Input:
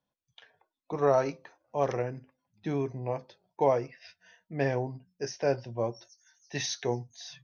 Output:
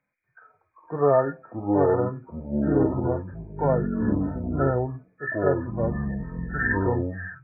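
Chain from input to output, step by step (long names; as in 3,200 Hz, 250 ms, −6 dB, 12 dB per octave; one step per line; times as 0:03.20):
hearing-aid frequency compression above 1,200 Hz 4 to 1
harmonic and percussive parts rebalanced percussive −10 dB
delay with pitch and tempo change per echo 241 ms, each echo −6 semitones, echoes 3
level +6.5 dB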